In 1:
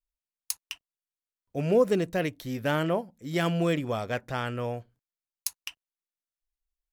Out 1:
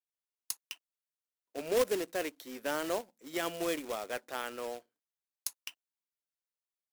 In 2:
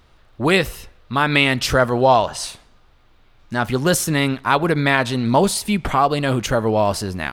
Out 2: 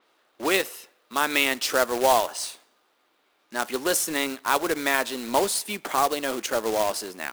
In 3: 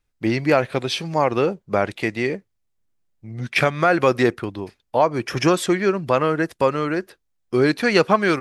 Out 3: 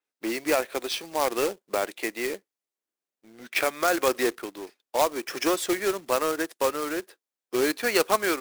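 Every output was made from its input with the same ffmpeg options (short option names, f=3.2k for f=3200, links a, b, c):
-af "highpass=f=290:w=0.5412,highpass=f=290:w=1.3066,acrusher=bits=2:mode=log:mix=0:aa=0.000001,adynamicequalizer=threshold=0.0126:dfrequency=5400:dqfactor=0.7:tfrequency=5400:tqfactor=0.7:attack=5:release=100:ratio=0.375:range=2:mode=boostabove:tftype=highshelf,volume=-6.5dB"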